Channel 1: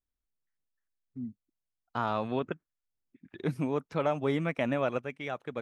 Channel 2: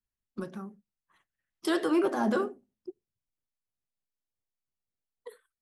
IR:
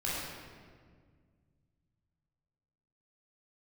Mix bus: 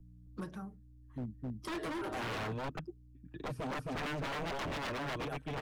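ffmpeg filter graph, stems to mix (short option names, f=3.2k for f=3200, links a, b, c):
-filter_complex "[0:a]aeval=exprs='val(0)+0.001*(sin(2*PI*60*n/s)+sin(2*PI*2*60*n/s)/2+sin(2*PI*3*60*n/s)/3+sin(2*PI*4*60*n/s)/4+sin(2*PI*5*60*n/s)/5)':c=same,lowshelf=f=290:g=11,bandreject=f=2.1k:w=5.5,volume=-3dB,asplit=2[a][b];[b]volume=-3dB[c];[1:a]acompressor=threshold=-27dB:ratio=6,volume=-4dB,asplit=2[d][e];[e]apad=whole_len=247711[f];[a][f]sidechaincompress=threshold=-53dB:ratio=4:attack=23:release=729[g];[c]aecho=0:1:264:1[h];[g][d][h]amix=inputs=3:normalize=0,aecho=1:1:6.5:0.63,acrossover=split=170|470|2600[i][j][k][l];[i]acompressor=threshold=-38dB:ratio=4[m];[j]acompressor=threshold=-34dB:ratio=4[n];[k]acompressor=threshold=-30dB:ratio=4[o];[l]acompressor=threshold=-52dB:ratio=4[p];[m][n][o][p]amix=inputs=4:normalize=0,aeval=exprs='0.0224*(abs(mod(val(0)/0.0224+3,4)-2)-1)':c=same"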